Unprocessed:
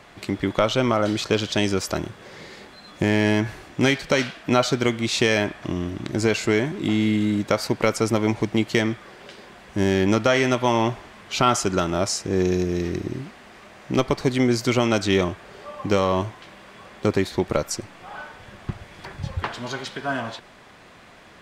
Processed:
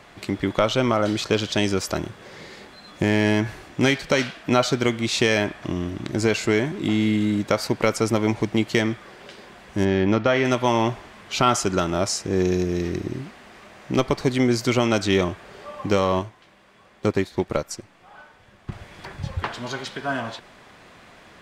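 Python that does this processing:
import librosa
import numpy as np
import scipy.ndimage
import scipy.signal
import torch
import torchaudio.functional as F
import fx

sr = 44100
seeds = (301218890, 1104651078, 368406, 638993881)

y = fx.air_absorb(x, sr, metres=180.0, at=(9.84, 10.44), fade=0.02)
y = fx.upward_expand(y, sr, threshold_db=-36.0, expansion=1.5, at=(16.19, 18.72))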